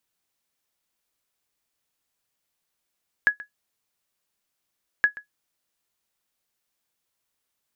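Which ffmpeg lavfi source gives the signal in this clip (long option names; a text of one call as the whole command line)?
ffmpeg -f lavfi -i "aevalsrc='0.355*(sin(2*PI*1680*mod(t,1.77))*exp(-6.91*mod(t,1.77)/0.12)+0.106*sin(2*PI*1680*max(mod(t,1.77)-0.13,0))*exp(-6.91*max(mod(t,1.77)-0.13,0)/0.12))':duration=3.54:sample_rate=44100" out.wav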